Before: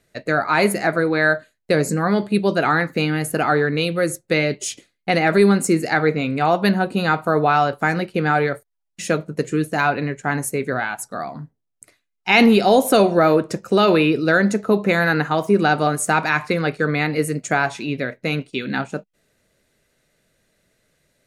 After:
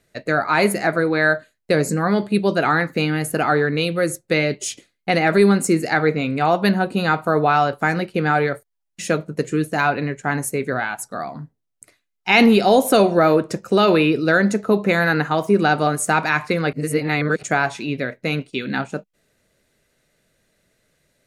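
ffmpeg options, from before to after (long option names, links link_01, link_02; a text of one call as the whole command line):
ffmpeg -i in.wav -filter_complex "[0:a]asplit=3[link_01][link_02][link_03];[link_01]atrim=end=16.732[link_04];[link_02]atrim=start=16.728:end=17.432,asetpts=PTS-STARTPTS,areverse[link_05];[link_03]atrim=start=17.428[link_06];[link_04][link_05]acrossfade=duration=0.004:curve1=hsin:curve2=hsin[link_07];[link_07][link_06]acrossfade=duration=0.004:curve1=hsin:curve2=hsin" out.wav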